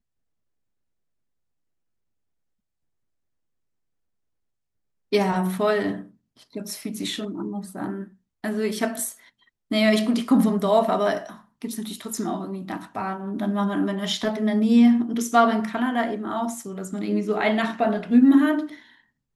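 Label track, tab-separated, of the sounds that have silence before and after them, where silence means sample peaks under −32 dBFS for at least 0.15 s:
5.130000	6.010000	sound
6.560000	8.040000	sound
8.440000	9.120000	sound
9.710000	11.310000	sound
11.620000	18.740000	sound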